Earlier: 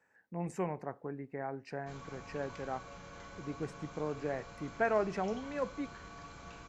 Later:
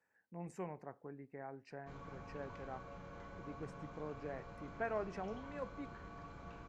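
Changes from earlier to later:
speech -9.0 dB; background: add low-pass 1.1 kHz 6 dB/octave

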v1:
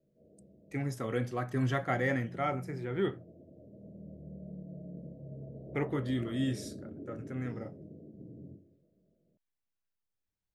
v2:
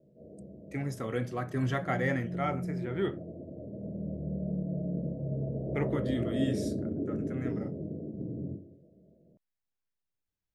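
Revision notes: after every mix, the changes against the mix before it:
background +11.5 dB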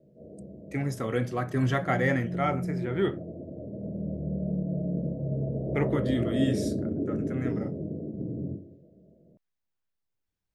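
speech +4.5 dB; background +3.5 dB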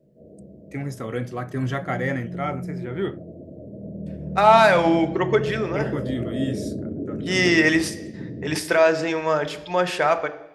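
second voice: unmuted

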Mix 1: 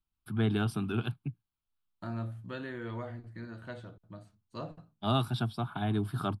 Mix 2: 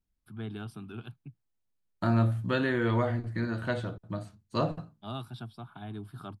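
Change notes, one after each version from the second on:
first voice -10.0 dB; second voice +12.0 dB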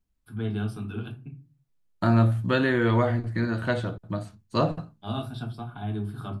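second voice +5.0 dB; reverb: on, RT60 0.35 s

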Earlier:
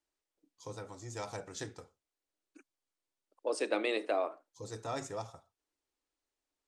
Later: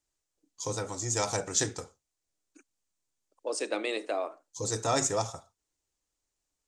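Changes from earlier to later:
first voice +10.0 dB; master: add peaking EQ 7 kHz +10.5 dB 0.91 oct

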